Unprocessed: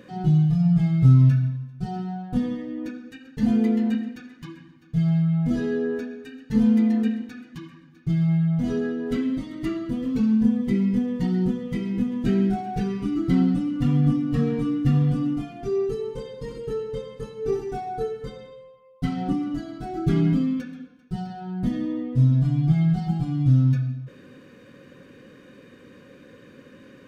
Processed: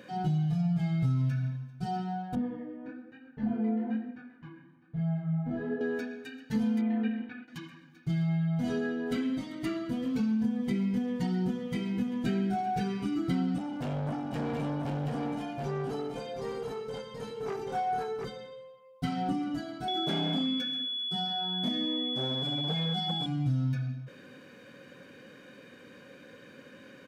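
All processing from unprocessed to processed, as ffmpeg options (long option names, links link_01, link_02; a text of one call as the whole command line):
ffmpeg -i in.wav -filter_complex "[0:a]asettb=1/sr,asplit=3[link_01][link_02][link_03];[link_01]atrim=end=2.354[link_04];[link_02]atrim=start=2.35:end=5.81,asetpts=PTS-STARTPTS,afade=type=in:duration=0.004:curve=qsin,afade=type=out:start_time=3.456:duration=0.004:curve=qsin,lowpass=1400,flanger=delay=19.5:depth=7.7:speed=1.1[link_05];[link_03]atrim=start=5.806[link_06];[link_04][link_05]acrossfade=duration=0.004:curve1=hsin:curve2=qsin[link_07];[link_07][link_06]acrossfade=duration=0.004:curve1=qsin:curve2=hsin,asettb=1/sr,asplit=3[link_08][link_09][link_10];[link_08]atrim=end=6.814[link_11];[link_09]atrim=start=6.81:end=7.48,asetpts=PTS-STARTPTS,afade=type=in:duration=0.004:curve=qsin,afade=type=out:start_time=0.666:duration=0.004:curve=qsin,lowpass=frequency=3000:width=0.5412,lowpass=frequency=3000:width=1.3066,agate=range=-33dB:threshold=-39dB:ratio=3:release=100:detection=peak[link_12];[link_10]atrim=start=7.476[link_13];[link_11][link_12]acrossfade=duration=0.004:curve1=hsin:curve2=qsin[link_14];[link_14][link_13]acrossfade=duration=0.004:curve1=qsin:curve2=hsin,asettb=1/sr,asplit=3[link_15][link_16][link_17];[link_15]atrim=end=13.584[link_18];[link_16]atrim=start=13.58:end=18.25,asetpts=PTS-STARTPTS,afade=type=in:duration=0.004:curve=qsin,afade=type=out:start_time=4.666:duration=0.004:curve=qsin,aeval=exprs='(tanh(17.8*val(0)+0.15)-tanh(0.15))/17.8':channel_layout=same,asplit=2[link_19][link_20];[link_20]adelay=19,volume=-11dB[link_21];[link_19][link_21]amix=inputs=2:normalize=0,atrim=end_sample=205947,aecho=1:1:728:0.631,atrim=end_sample=205947[link_22];[link_17]atrim=start=18.246[link_23];[link_18][link_22]acrossfade=duration=0.004:curve1=hsin:curve2=qsin[link_24];[link_24][link_23]acrossfade=duration=0.004:curve1=qsin:curve2=hsin,asettb=1/sr,asplit=3[link_25][link_26][link_27];[link_25]atrim=end=19.884[link_28];[link_26]atrim=start=19.88:end=23.26,asetpts=PTS-STARTPTS,afade=type=in:duration=0.004:curve=qsin,afade=type=out:start_time=3.376:duration=0.004:curve=qsin,asoftclip=type=hard:threshold=-18dB,highpass=frequency=180:width=0.5412,highpass=frequency=180:width=1.3066,aeval=exprs='val(0)+0.0355*sin(2*PI*3400*n/s)':channel_layout=same[link_29];[link_27]atrim=start=23.256[link_30];[link_28][link_29]acrossfade=duration=0.004:curve1=hsin:curve2=qsin[link_31];[link_31][link_30]acrossfade=duration=0.004:curve1=qsin:curve2=hsin,highpass=frequency=310:poles=1,aecho=1:1:1.3:0.32,acompressor=threshold=-26dB:ratio=4" out.wav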